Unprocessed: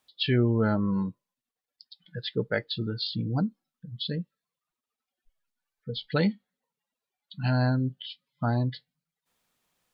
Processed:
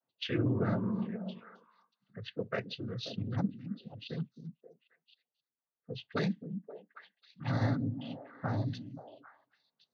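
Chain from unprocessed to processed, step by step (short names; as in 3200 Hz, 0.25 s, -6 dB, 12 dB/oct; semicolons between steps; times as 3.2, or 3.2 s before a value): noise vocoder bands 16; low-pass opened by the level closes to 980 Hz, open at -22 dBFS; delay with a stepping band-pass 0.266 s, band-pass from 210 Hz, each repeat 1.4 oct, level -6.5 dB; gain -6.5 dB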